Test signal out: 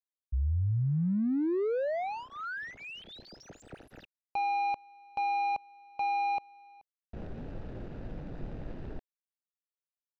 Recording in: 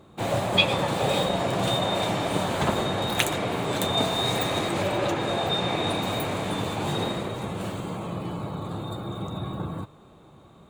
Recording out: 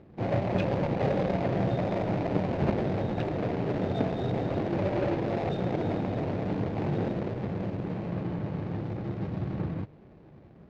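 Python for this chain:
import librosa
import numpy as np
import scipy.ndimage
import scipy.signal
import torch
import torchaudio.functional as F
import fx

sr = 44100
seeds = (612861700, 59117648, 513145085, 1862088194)

y = scipy.signal.medfilt(x, 41)
y = fx.air_absorb(y, sr, metres=200.0)
y = F.gain(torch.from_numpy(y), 1.0).numpy()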